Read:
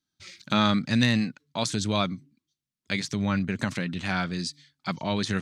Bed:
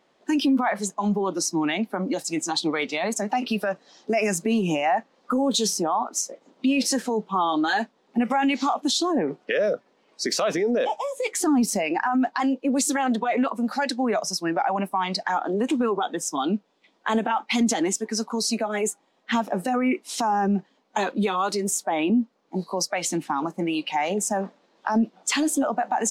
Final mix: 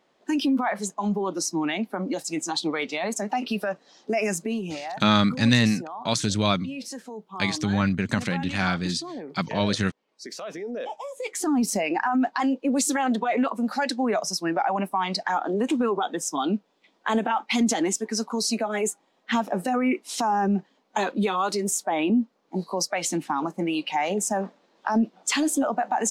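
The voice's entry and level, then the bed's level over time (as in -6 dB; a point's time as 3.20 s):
4.50 s, +3.0 dB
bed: 4.32 s -2 dB
4.93 s -13 dB
10.38 s -13 dB
11.76 s -0.5 dB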